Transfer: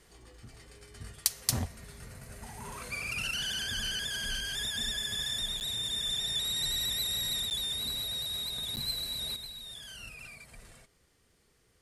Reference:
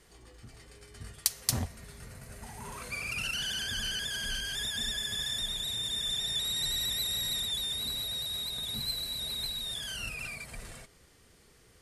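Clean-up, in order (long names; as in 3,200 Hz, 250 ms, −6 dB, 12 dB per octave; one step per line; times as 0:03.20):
repair the gap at 0:05.60/0:07.50/0:08.76, 9.4 ms
level correction +8 dB, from 0:09.36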